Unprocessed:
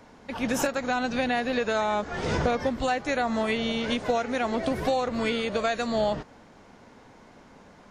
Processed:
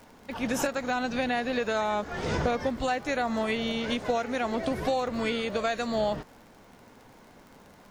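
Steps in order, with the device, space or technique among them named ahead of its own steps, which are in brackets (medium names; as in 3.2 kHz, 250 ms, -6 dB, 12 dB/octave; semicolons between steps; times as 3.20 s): vinyl LP (crackle 47 per s -40 dBFS; pink noise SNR 35 dB); trim -2 dB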